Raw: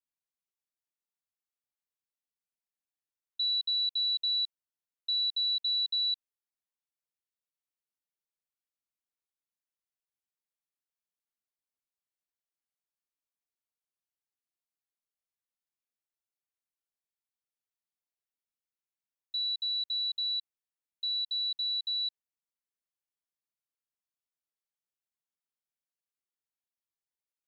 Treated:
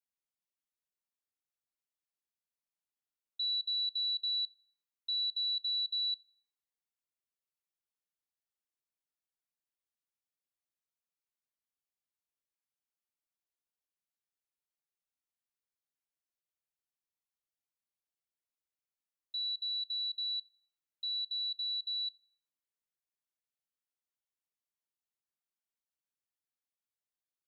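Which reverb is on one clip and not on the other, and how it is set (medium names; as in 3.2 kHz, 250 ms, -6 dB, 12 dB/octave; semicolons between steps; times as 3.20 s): algorithmic reverb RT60 1.9 s, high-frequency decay 0.3×, DRR 19.5 dB; trim -4.5 dB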